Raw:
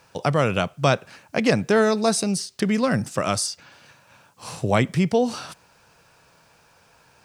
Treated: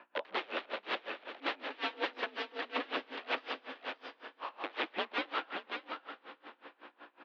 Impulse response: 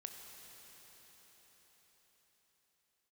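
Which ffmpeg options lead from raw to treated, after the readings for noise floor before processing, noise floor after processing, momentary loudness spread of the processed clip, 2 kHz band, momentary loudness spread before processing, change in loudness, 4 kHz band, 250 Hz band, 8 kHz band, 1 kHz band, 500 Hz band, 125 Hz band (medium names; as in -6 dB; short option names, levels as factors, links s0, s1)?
-58 dBFS, -71 dBFS, 15 LU, -8.5 dB, 12 LU, -16.5 dB, -8.5 dB, -23.5 dB, under -35 dB, -11.5 dB, -19.0 dB, under -40 dB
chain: -filter_complex "[0:a]acrossover=split=430 2500:gain=0.141 1 0.251[s0][s1][s2];[s0][s1][s2]amix=inputs=3:normalize=0,asplit=2[s3][s4];[s4]acompressor=threshold=0.0316:ratio=6,volume=0.708[s5];[s3][s5]amix=inputs=2:normalize=0,aeval=exprs='val(0)+0.00224*(sin(2*PI*60*n/s)+sin(2*PI*2*60*n/s)/2+sin(2*PI*3*60*n/s)/3+sin(2*PI*4*60*n/s)/4+sin(2*PI*5*60*n/s)/5)':c=same,aeval=exprs='(mod(15.8*val(0)+1,2)-1)/15.8':c=same,aecho=1:1:580:0.531,asplit=2[s6][s7];[1:a]atrim=start_sample=2205,adelay=133[s8];[s7][s8]afir=irnorm=-1:irlink=0,volume=0.75[s9];[s6][s9]amix=inputs=2:normalize=0,highpass=f=220:t=q:w=0.5412,highpass=f=220:t=q:w=1.307,lowpass=f=3500:t=q:w=0.5176,lowpass=f=3500:t=q:w=0.7071,lowpass=f=3500:t=q:w=1.932,afreqshift=56,aeval=exprs='val(0)*pow(10,-26*(0.5-0.5*cos(2*PI*5.4*n/s))/20)':c=same"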